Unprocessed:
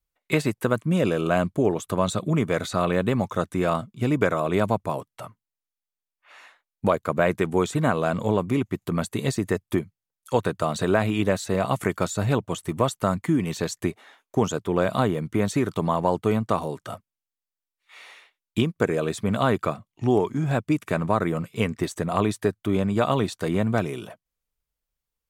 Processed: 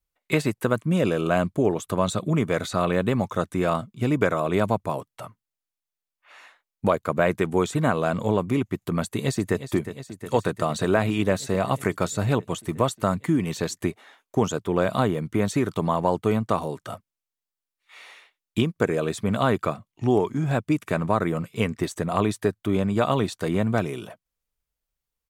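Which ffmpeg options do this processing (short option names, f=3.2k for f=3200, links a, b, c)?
-filter_complex "[0:a]asplit=2[a][b];[b]afade=t=in:st=9.01:d=0.01,afade=t=out:st=9.66:d=0.01,aecho=0:1:360|720|1080|1440|1800|2160|2520|2880|3240|3600|3960|4320:0.251189|0.200951|0.160761|0.128609|0.102887|0.0823095|0.0658476|0.0526781|0.0421425|0.033714|0.0269712|0.0215769[c];[a][c]amix=inputs=2:normalize=0"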